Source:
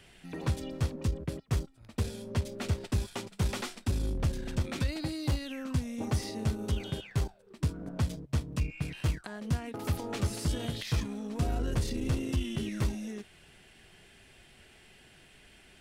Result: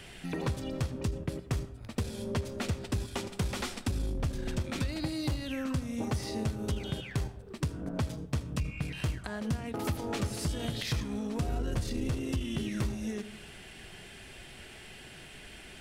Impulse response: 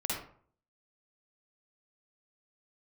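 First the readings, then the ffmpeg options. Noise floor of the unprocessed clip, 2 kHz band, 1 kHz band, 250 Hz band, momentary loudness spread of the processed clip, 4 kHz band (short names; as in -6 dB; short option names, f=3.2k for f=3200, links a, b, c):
-58 dBFS, +1.5 dB, +1.0 dB, +1.0 dB, 14 LU, +1.0 dB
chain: -filter_complex "[0:a]acompressor=threshold=-41dB:ratio=3,asplit=2[a][b];[1:a]atrim=start_sample=2205,asetrate=27783,aresample=44100[c];[b][c]afir=irnorm=-1:irlink=0,volume=-20dB[d];[a][d]amix=inputs=2:normalize=0,volume=7.5dB"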